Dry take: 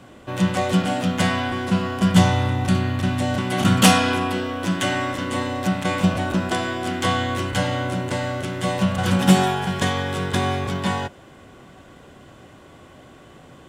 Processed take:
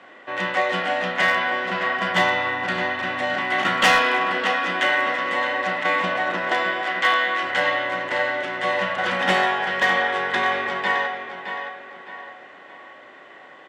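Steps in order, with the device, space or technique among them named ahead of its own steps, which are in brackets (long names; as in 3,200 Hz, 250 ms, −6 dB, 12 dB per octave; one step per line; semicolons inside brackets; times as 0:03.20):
0:06.82–0:07.43: meter weighting curve A
tape delay 615 ms, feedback 42%, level −7.5 dB, low-pass 4,200 Hz
megaphone (band-pass filter 540–3,200 Hz; parametric band 1,900 Hz +11.5 dB 0.24 octaves; hard clipping −13.5 dBFS, distortion −20 dB; double-tracking delay 34 ms −11.5 dB)
level +2.5 dB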